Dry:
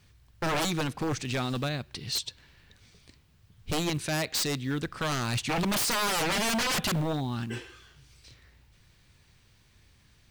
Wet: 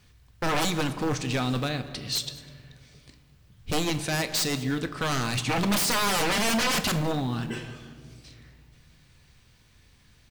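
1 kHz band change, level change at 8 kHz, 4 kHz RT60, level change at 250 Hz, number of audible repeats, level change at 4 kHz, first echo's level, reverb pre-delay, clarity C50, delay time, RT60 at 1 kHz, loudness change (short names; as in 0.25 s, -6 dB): +3.0 dB, +2.5 dB, 1.0 s, +3.0 dB, 1, +2.5 dB, -20.0 dB, 4 ms, 12.5 dB, 0.201 s, 1.8 s, +2.5 dB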